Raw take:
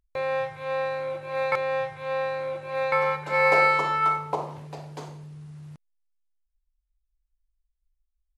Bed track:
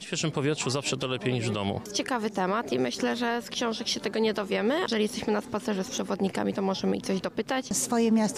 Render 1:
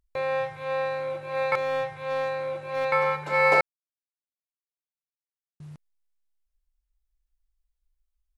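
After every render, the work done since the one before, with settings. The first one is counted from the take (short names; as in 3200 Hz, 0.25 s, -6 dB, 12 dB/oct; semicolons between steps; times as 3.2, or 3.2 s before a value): 1.57–2.85 overloaded stage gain 22 dB; 3.61–5.6 mute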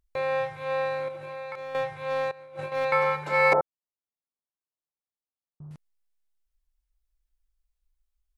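1.08–1.75 compressor 5:1, threshold -35 dBFS; 2.31–2.72 negative-ratio compressor -38 dBFS, ratio -0.5; 3.53–5.71 steep low-pass 1200 Hz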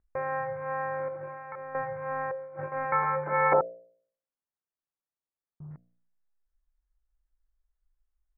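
steep low-pass 1900 Hz 48 dB/oct; de-hum 58.94 Hz, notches 12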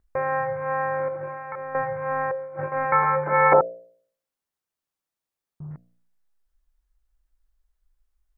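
gain +6.5 dB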